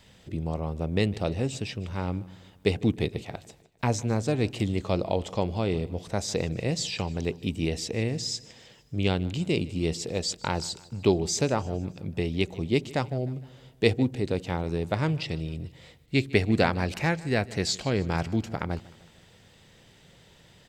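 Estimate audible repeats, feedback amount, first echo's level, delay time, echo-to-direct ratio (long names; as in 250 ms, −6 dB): 3, 52%, −21.0 dB, 153 ms, −19.5 dB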